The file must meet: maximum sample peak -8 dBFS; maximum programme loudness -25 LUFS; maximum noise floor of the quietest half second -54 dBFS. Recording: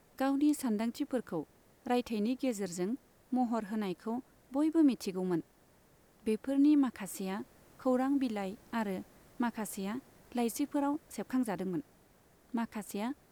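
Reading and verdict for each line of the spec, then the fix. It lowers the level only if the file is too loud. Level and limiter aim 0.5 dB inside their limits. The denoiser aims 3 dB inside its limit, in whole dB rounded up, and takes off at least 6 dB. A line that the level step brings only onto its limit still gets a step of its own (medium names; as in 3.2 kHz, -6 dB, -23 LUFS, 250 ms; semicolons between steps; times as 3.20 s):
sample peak -19.0 dBFS: pass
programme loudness -34.5 LUFS: pass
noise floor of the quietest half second -65 dBFS: pass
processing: none needed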